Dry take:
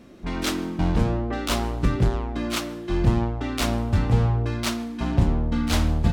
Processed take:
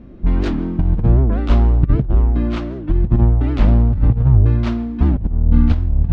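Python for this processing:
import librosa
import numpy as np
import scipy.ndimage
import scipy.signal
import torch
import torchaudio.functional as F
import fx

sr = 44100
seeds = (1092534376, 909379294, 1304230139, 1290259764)

y = fx.riaa(x, sr, side='playback')
y = fx.over_compress(y, sr, threshold_db=-9.0, ratio=-0.5)
y = fx.air_absorb(y, sr, metres=130.0)
y = fx.record_warp(y, sr, rpm=78.0, depth_cents=250.0)
y = y * librosa.db_to_amplitude(-2.0)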